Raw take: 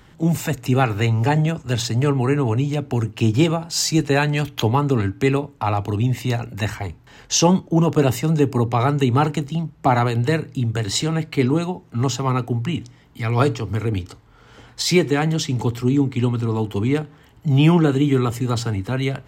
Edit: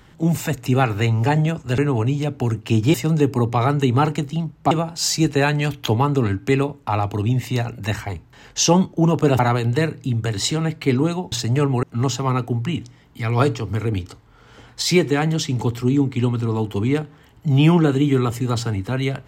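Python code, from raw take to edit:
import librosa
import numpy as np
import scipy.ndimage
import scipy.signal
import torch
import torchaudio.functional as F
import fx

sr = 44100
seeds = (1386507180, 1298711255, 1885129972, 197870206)

y = fx.edit(x, sr, fx.move(start_s=1.78, length_s=0.51, to_s=11.83),
    fx.move(start_s=8.13, length_s=1.77, to_s=3.45), tone=tone)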